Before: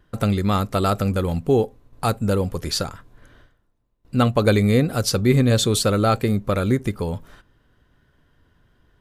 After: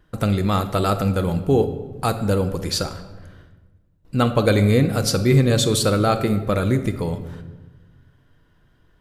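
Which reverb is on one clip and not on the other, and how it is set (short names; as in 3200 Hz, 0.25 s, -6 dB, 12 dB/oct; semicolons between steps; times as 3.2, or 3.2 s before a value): shoebox room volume 800 m³, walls mixed, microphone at 0.6 m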